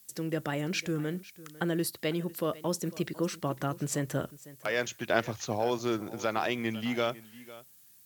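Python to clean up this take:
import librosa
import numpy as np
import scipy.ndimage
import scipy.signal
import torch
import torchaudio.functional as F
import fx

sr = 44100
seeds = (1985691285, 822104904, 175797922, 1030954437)

y = fx.noise_reduce(x, sr, print_start_s=7.54, print_end_s=8.04, reduce_db=23.0)
y = fx.fix_echo_inverse(y, sr, delay_ms=501, level_db=-18.5)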